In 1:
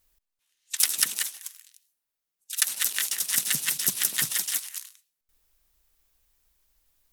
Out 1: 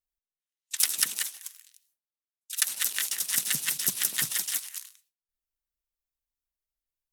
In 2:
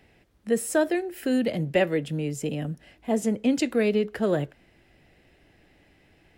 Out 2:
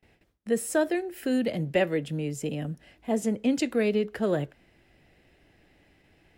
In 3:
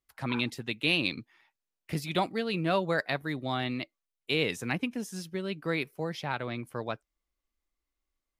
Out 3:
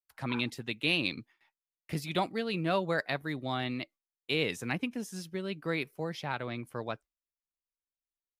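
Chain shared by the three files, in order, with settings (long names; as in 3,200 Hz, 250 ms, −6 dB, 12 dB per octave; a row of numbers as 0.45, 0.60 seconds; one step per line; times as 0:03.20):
noise gate with hold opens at −50 dBFS
level −2 dB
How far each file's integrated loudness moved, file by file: −2.0, −2.0, −2.0 LU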